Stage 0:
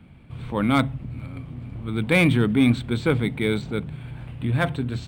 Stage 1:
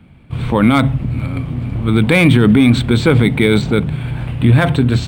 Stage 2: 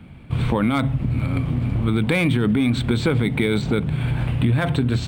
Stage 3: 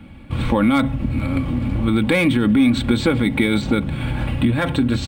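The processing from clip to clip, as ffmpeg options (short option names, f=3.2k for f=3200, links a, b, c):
-af "agate=range=-10dB:threshold=-39dB:ratio=16:detection=peak,alimiter=level_in=15.5dB:limit=-1dB:release=50:level=0:latency=1,volume=-1dB"
-af "acompressor=threshold=-20dB:ratio=4,volume=2dB"
-af "aecho=1:1:3.6:0.55,volume=2dB"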